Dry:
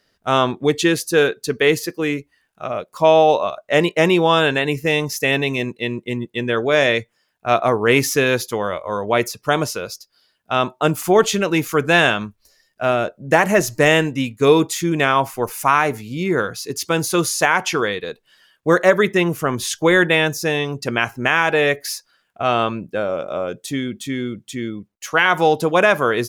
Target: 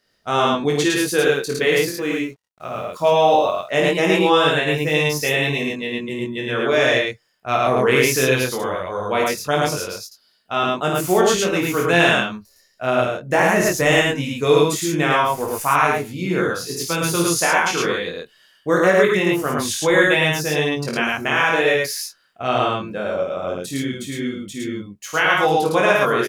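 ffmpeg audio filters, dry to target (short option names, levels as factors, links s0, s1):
-filter_complex "[0:a]highshelf=f=4500:g=3,asettb=1/sr,asplit=3[s0][s1][s2];[s0]atrim=end=1.254[s3];[s1]atrim=start=1.25:end=3.61,asetpts=PTS-STARTPTS,afade=t=in:d=0.004:c=qsin,afade=t=out:st=2.356:d=0.004:c=qsin,acrusher=bits=7:mix=0:aa=0.5[s4];[s2]atrim=start=3.606[s5];[s3][s4]acrossfade=d=0.004:c1=hsin:c2=qsin[s6];[s6][s5]acrossfade=d=0.004:c1=qsin:c2=hsin,flanger=delay=20:depth=3.9:speed=0.2,aecho=1:1:52.48|107.9:0.562|0.891,volume=0.891"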